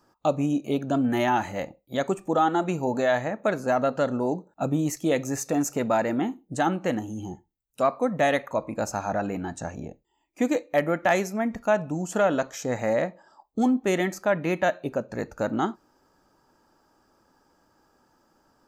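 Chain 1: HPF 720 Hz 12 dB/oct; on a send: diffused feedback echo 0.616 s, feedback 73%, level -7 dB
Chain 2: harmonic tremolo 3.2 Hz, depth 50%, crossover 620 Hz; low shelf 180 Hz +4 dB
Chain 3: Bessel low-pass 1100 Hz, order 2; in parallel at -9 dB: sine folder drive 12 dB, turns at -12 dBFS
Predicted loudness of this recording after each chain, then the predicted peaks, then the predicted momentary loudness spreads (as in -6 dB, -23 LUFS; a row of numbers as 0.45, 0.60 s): -30.5, -28.0, -22.0 LUFS; -9.5, -10.0, -13.5 dBFS; 12, 8, 6 LU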